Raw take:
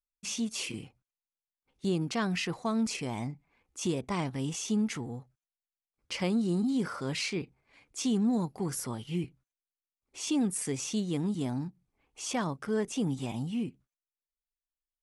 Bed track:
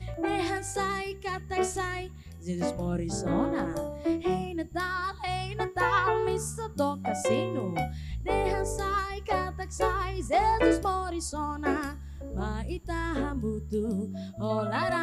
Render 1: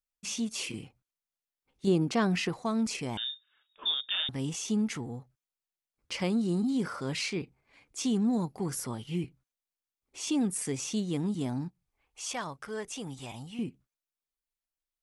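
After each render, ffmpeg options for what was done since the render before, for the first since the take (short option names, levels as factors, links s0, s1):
-filter_complex "[0:a]asettb=1/sr,asplit=3[s0][s1][s2];[s0]atrim=end=1.874[s3];[s1]atrim=start=1.87:end=2.49,asetpts=PTS-STARTPTS,afade=t=in:d=0.004:c=qsin,afade=t=out:st=0.616:d=0.004:c=qsin,equalizer=f=400:w=0.45:g=5.5[s4];[s2]atrim=start=2.486[s5];[s3][s4]acrossfade=d=0.004:c1=hsin:c2=qsin[s6];[s6][s5]acrossfade=d=0.004:c1=qsin:c2=hsin,asettb=1/sr,asplit=3[s7][s8][s9];[s7]atrim=end=3.174[s10];[s8]atrim=start=3.17:end=4.29,asetpts=PTS-STARTPTS,afade=t=in:d=0.004:c=qsin,afade=t=out:st=1.116:d=0.004:c=qsin,lowpass=f=3200:t=q:w=0.5098,lowpass=f=3200:t=q:w=0.6013,lowpass=f=3200:t=q:w=0.9,lowpass=f=3200:t=q:w=2.563,afreqshift=-3800[s11];[s9]atrim=start=4.286[s12];[s10][s11]acrossfade=d=0.004:c1=hsin:c2=qsin[s13];[s13][s12]acrossfade=d=0.004:c1=qsin:c2=hsin,asettb=1/sr,asplit=3[s14][s15][s16];[s14]atrim=end=11.684[s17];[s15]atrim=start=11.68:end=13.59,asetpts=PTS-STARTPTS,afade=t=in:d=0.004:c=qsin,afade=t=out:st=1.906:d=0.004:c=qsin,equalizer=f=220:t=o:w=2.2:g=-11.5[s18];[s16]atrim=start=13.586[s19];[s17][s18]acrossfade=d=0.004:c1=hsin:c2=qsin[s20];[s20][s19]acrossfade=d=0.004:c1=qsin:c2=hsin"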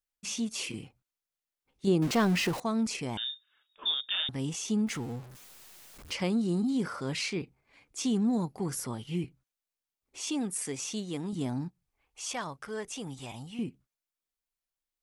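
-filter_complex "[0:a]asettb=1/sr,asplit=3[s0][s1][s2];[s0]atrim=end=2.024[s3];[s1]atrim=start=2.02:end=2.6,asetpts=PTS-STARTPTS,afade=t=in:d=0.004:c=qsin,afade=t=out:st=0.576:d=0.004:c=qsin,aeval=exprs='val(0)+0.5*0.0224*sgn(val(0))':c=same[s4];[s2]atrim=start=2.596[s5];[s3][s4]acrossfade=d=0.004:c1=hsin:c2=qsin[s6];[s6][s5]acrossfade=d=0.004:c1=qsin:c2=hsin,asettb=1/sr,asplit=3[s7][s8][s9];[s7]atrim=end=4.874[s10];[s8]atrim=start=4.87:end=6.14,asetpts=PTS-STARTPTS,afade=t=in:d=0.004:c=qsin,afade=t=out:st=1.266:d=0.004:c=qsin,aeval=exprs='val(0)+0.5*0.00668*sgn(val(0))':c=same[s11];[s9]atrim=start=6.136[s12];[s10][s11]acrossfade=d=0.004:c1=hsin:c2=qsin[s13];[s13][s12]acrossfade=d=0.004:c1=qsin:c2=hsin,asettb=1/sr,asplit=3[s14][s15][s16];[s14]atrim=end=10.214[s17];[s15]atrim=start=10.21:end=11.33,asetpts=PTS-STARTPTS,afade=t=in:d=0.004:c=qsin,afade=t=out:st=1.116:d=0.004:c=qsin,lowshelf=f=270:g=-8.5[s18];[s16]atrim=start=11.326[s19];[s17][s18]acrossfade=d=0.004:c1=hsin:c2=qsin[s20];[s20][s19]acrossfade=d=0.004:c1=qsin:c2=hsin"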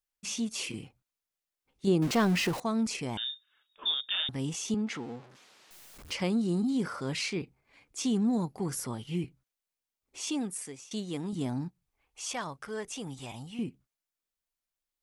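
-filter_complex "[0:a]asettb=1/sr,asplit=3[s0][s1][s2];[s0]atrim=end=4.744[s3];[s1]atrim=start=4.74:end=5.71,asetpts=PTS-STARTPTS,afade=t=in:d=0.004:c=qsin,afade=t=out:st=0.966:d=0.004:c=qsin,highpass=220,lowpass=4900[s4];[s2]atrim=start=5.706[s5];[s3][s4]acrossfade=d=0.004:c1=hsin:c2=qsin[s6];[s6][s5]acrossfade=d=0.004:c1=qsin:c2=hsin,asplit=2[s7][s8];[s7]atrim=end=10.91,asetpts=PTS-STARTPTS,afade=t=out:st=10.35:d=0.56:silence=0.1[s9];[s8]atrim=start=10.91,asetpts=PTS-STARTPTS,afade=t=in:d=0.004:c=hsin:silence=0.1[s10];[s9][s10]concat=n=2:v=0:a=1"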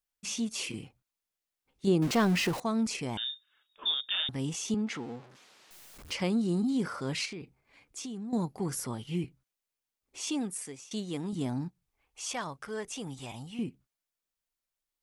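-filter_complex "[0:a]asettb=1/sr,asplit=3[s0][s1][s2];[s0]atrim=end=7.254[s3];[s1]atrim=start=7.25:end=8.33,asetpts=PTS-STARTPTS,afade=t=in:d=0.004:c=qsin,afade=t=out:st=1.076:d=0.004:c=qsin,acompressor=threshold=0.0141:ratio=6:attack=3.2:release=140:knee=1:detection=peak[s4];[s2]atrim=start=8.326[s5];[s3][s4]acrossfade=d=0.004:c1=hsin:c2=qsin[s6];[s6][s5]acrossfade=d=0.004:c1=qsin:c2=hsin"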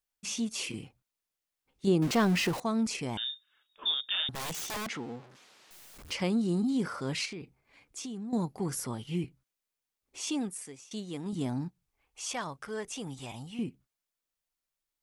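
-filter_complex "[0:a]asplit=3[s0][s1][s2];[s0]afade=t=out:st=4.34:d=0.02[s3];[s1]aeval=exprs='(mod(37.6*val(0)+1,2)-1)/37.6':c=same,afade=t=in:st=4.34:d=0.02,afade=t=out:st=4.86:d=0.02[s4];[s2]afade=t=in:st=4.86:d=0.02[s5];[s3][s4][s5]amix=inputs=3:normalize=0,asplit=3[s6][s7][s8];[s6]atrim=end=10.492[s9];[s7]atrim=start=10.488:end=11.262,asetpts=PTS-STARTPTS,volume=0.708[s10];[s8]atrim=start=11.258[s11];[s9][s10]acrossfade=d=0.004:c1=hsin:c2=hsin[s12];[s12][s11]acrossfade=d=0.004:c1=hsin:c2=hsin"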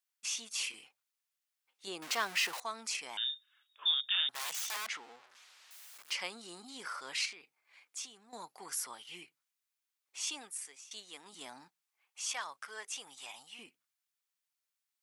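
-af "highpass=1100"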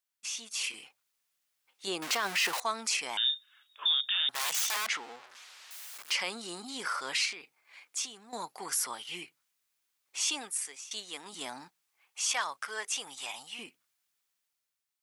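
-af "alimiter=level_in=1.5:limit=0.0631:level=0:latency=1:release=15,volume=0.668,dynaudnorm=f=130:g=11:m=2.51"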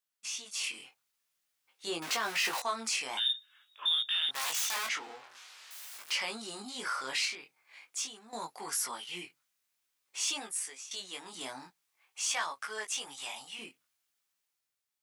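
-filter_complex "[0:a]flanger=delay=18:depth=4.8:speed=0.48,asplit=2[s0][s1];[s1]asoftclip=type=tanh:threshold=0.0158,volume=0.316[s2];[s0][s2]amix=inputs=2:normalize=0"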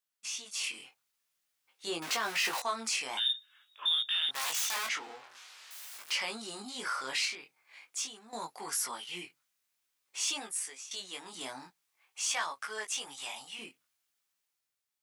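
-af anull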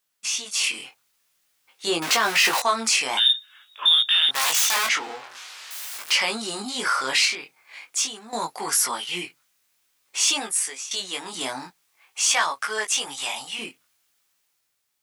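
-af "volume=3.98"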